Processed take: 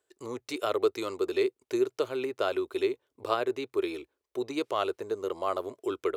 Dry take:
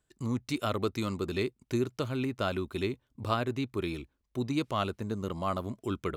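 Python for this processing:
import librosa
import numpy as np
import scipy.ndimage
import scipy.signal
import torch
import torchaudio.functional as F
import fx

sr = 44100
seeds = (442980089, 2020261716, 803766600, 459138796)

y = scipy.signal.sosfilt(scipy.signal.butter(2, 80.0, 'highpass', fs=sr, output='sos'), x)
y = fx.low_shelf_res(y, sr, hz=280.0, db=-13.0, q=3.0)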